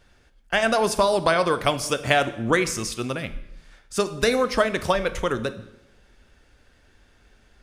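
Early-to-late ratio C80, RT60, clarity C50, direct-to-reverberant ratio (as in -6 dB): 16.5 dB, 0.90 s, 14.0 dB, 11.5 dB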